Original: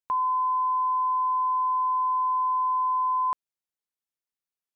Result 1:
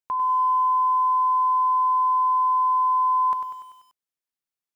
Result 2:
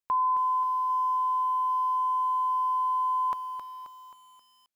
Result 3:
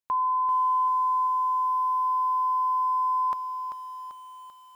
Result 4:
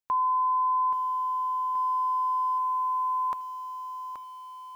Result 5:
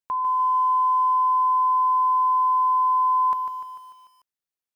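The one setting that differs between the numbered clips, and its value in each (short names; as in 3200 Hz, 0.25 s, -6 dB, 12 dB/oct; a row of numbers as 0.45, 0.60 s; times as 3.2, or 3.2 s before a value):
lo-fi delay, time: 97, 266, 390, 827, 148 ms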